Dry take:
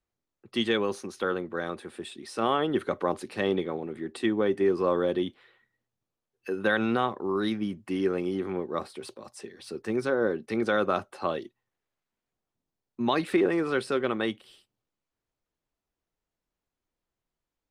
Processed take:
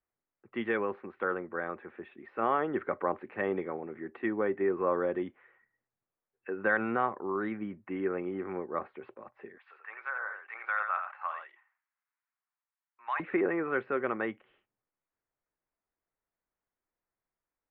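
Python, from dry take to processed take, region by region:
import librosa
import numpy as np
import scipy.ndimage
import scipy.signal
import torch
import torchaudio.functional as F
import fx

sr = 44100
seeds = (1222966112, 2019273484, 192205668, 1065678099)

y = fx.chain(x, sr, fx.highpass(hz=970.0, slope=24),
    fx.echo_single(ms=85, db=-7.0),
    fx.sustainer(db_per_s=110.0), at=(9.58, 13.2))
y = scipy.signal.sosfilt(scipy.signal.butter(6, 2200.0, 'lowpass', fs=sr, output='sos'), y)
y = fx.low_shelf(y, sr, hz=410.0, db=-9.5)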